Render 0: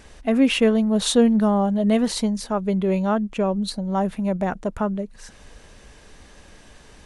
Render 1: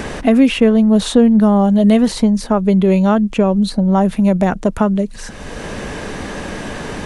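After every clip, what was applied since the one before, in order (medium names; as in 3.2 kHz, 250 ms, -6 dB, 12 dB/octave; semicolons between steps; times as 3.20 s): bass shelf 340 Hz +5.5 dB; three bands compressed up and down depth 70%; trim +5 dB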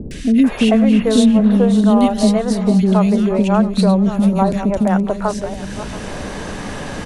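backward echo that repeats 340 ms, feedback 55%, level -11.5 dB; three bands offset in time lows, highs, mids 110/440 ms, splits 380/2100 Hz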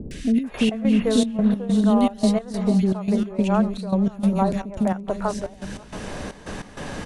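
trance gate "xxxxx..xx.." 195 bpm -12 dB; trim -5.5 dB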